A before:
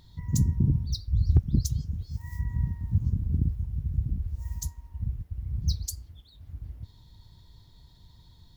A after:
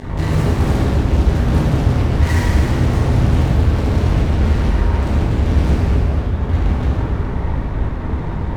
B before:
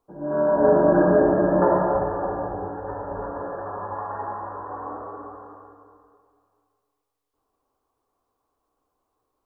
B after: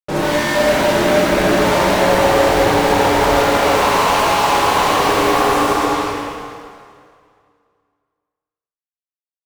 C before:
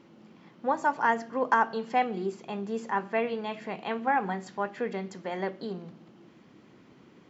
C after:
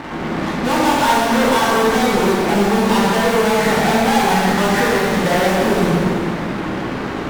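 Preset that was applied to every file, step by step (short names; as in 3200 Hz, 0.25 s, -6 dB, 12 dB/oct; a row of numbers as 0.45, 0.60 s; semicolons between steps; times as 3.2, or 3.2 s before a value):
steep low-pass 2100 Hz; notches 60/120/180/240/300/360/420 Hz; compressor 6:1, threshold -31 dBFS; fuzz box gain 57 dB, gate -55 dBFS; plate-style reverb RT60 2.2 s, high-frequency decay 0.85×, DRR -6 dB; gain -7 dB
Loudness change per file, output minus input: +12.5, +8.0, +14.0 LU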